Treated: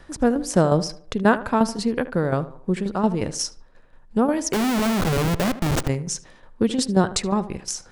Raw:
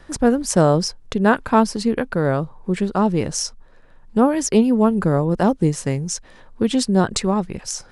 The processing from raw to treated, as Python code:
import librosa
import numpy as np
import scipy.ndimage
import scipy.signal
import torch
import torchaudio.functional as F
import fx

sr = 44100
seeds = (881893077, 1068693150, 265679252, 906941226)

y = fx.tremolo_shape(x, sr, shape='saw_down', hz=5.6, depth_pct=65)
y = fx.schmitt(y, sr, flips_db=-27.0, at=(4.53, 5.88))
y = fx.echo_tape(y, sr, ms=76, feedback_pct=44, wet_db=-13.5, lp_hz=2100.0, drive_db=1.0, wow_cents=34)